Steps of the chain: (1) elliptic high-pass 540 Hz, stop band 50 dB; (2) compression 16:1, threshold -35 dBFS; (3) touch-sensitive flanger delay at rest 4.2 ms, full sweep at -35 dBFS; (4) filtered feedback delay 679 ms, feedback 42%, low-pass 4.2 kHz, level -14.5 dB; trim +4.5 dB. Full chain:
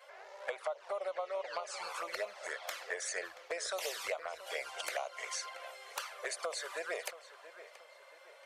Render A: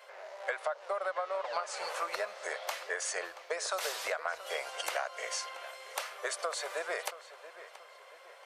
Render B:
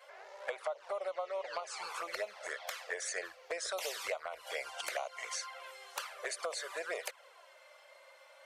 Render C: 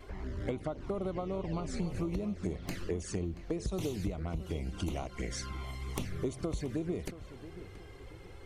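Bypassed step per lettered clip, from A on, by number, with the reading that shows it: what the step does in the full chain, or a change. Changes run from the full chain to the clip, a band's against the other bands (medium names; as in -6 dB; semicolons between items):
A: 3, 1 kHz band +2.5 dB; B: 4, momentary loudness spread change +5 LU; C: 1, 250 Hz band +31.5 dB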